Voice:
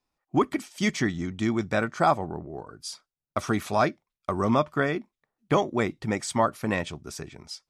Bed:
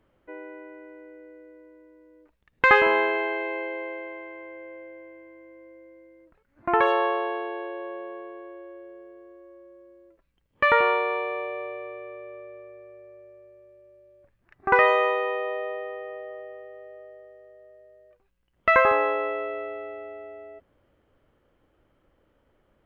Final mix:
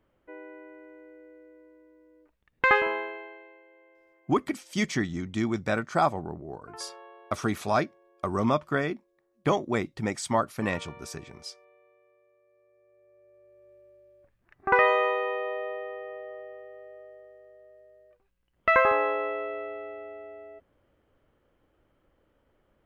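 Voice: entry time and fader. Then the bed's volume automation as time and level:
3.95 s, -2.0 dB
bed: 2.71 s -4 dB
3.63 s -25 dB
12.40 s -25 dB
13.72 s -2.5 dB

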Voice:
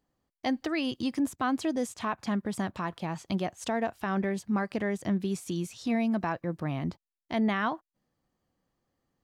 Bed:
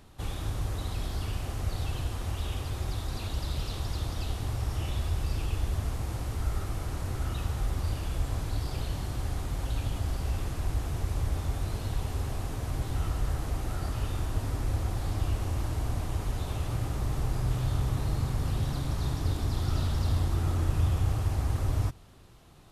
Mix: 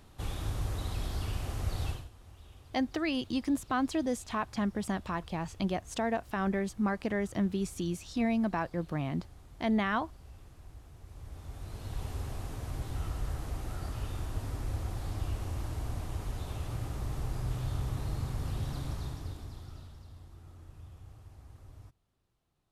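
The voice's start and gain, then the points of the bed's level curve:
2.30 s, -1.5 dB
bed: 1.90 s -2 dB
2.11 s -20.5 dB
11.00 s -20.5 dB
12.03 s -5.5 dB
18.89 s -5.5 dB
20.09 s -24 dB

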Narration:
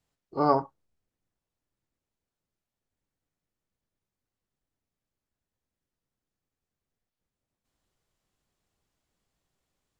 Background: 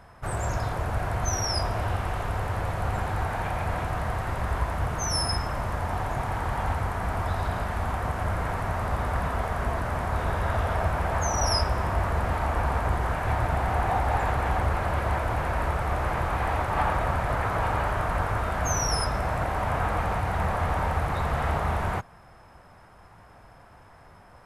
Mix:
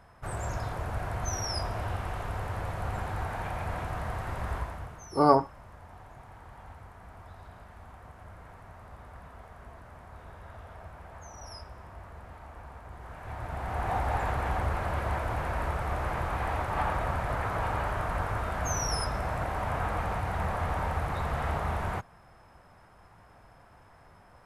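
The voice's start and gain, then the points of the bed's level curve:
4.80 s, +2.5 dB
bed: 4.55 s -5.5 dB
5.11 s -20.5 dB
12.88 s -20.5 dB
13.94 s -4.5 dB

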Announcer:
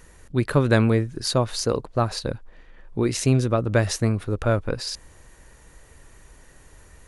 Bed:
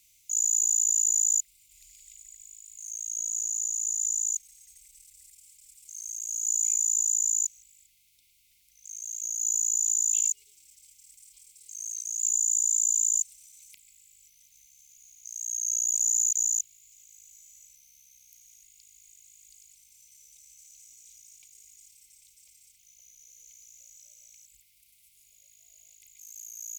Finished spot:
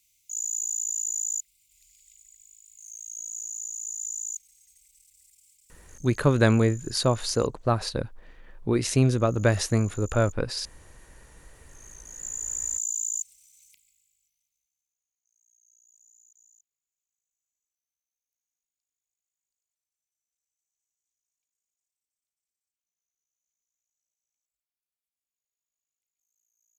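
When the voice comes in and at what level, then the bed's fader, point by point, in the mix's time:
5.70 s, -1.5 dB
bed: 5.52 s -5.5 dB
6.46 s -21 dB
11.22 s -21 dB
12.68 s -5 dB
13.66 s -5 dB
15.07 s -35 dB

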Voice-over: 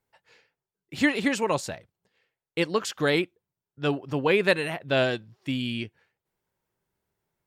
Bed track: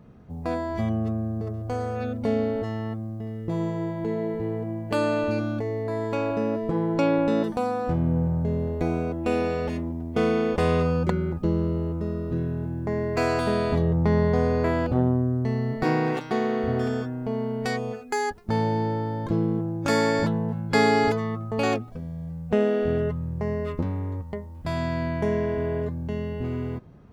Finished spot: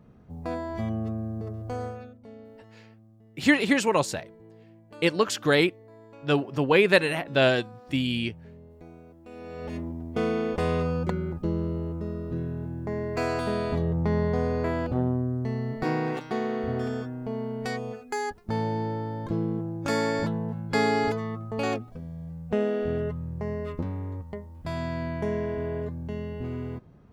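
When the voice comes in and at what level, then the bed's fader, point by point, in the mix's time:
2.45 s, +2.5 dB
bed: 1.86 s -4 dB
2.19 s -22 dB
9.28 s -22 dB
9.76 s -4 dB

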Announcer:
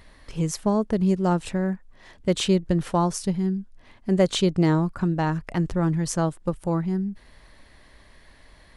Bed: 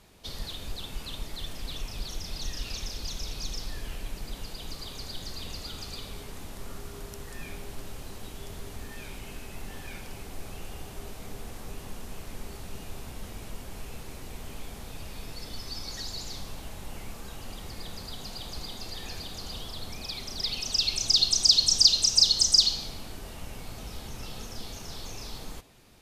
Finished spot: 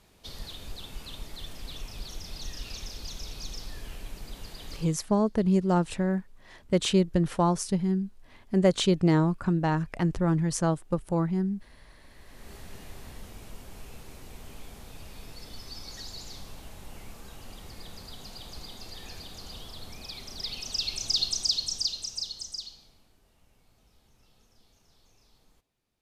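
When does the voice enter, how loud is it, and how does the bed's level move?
4.45 s, -2.0 dB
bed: 4.76 s -3.5 dB
5.11 s -27.5 dB
11.88 s -27.5 dB
12.52 s -4.5 dB
21.24 s -4.5 dB
23.17 s -24 dB

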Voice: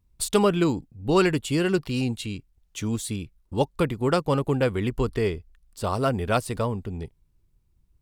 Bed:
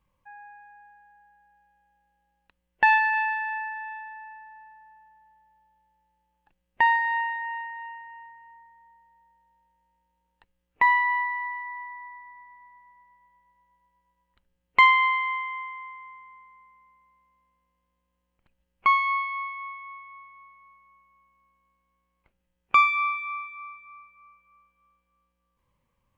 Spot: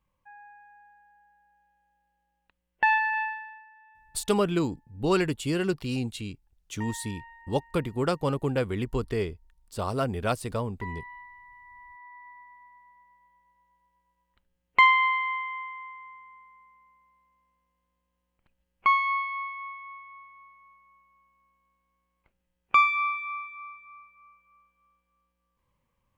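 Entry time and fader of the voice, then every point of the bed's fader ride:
3.95 s, -4.0 dB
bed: 3.23 s -3.5 dB
3.65 s -20 dB
11.44 s -20 dB
12.27 s -1.5 dB

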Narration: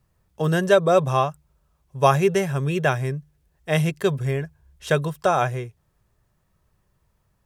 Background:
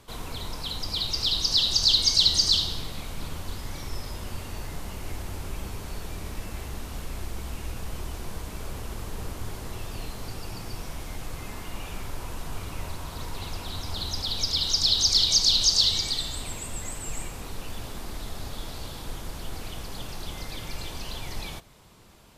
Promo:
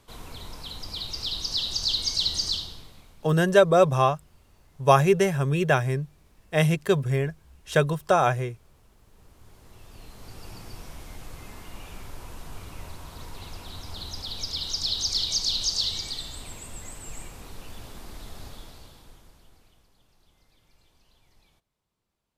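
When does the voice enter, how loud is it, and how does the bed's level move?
2.85 s, -0.5 dB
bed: 2.48 s -5.5 dB
3.40 s -23.5 dB
9.00 s -23.5 dB
10.47 s -5.5 dB
18.46 s -5.5 dB
19.95 s -28 dB

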